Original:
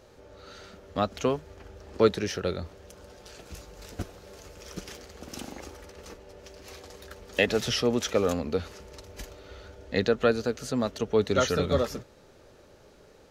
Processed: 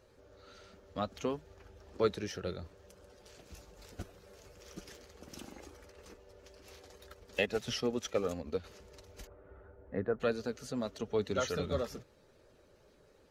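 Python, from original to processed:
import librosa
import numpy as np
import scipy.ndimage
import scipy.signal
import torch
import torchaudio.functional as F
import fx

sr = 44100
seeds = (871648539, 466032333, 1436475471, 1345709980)

y = fx.spec_quant(x, sr, step_db=15)
y = fx.transient(y, sr, attack_db=2, sustain_db=-7, at=(6.98, 8.64))
y = fx.lowpass(y, sr, hz=1600.0, slope=24, at=(9.27, 10.2))
y = F.gain(torch.from_numpy(y), -8.5).numpy()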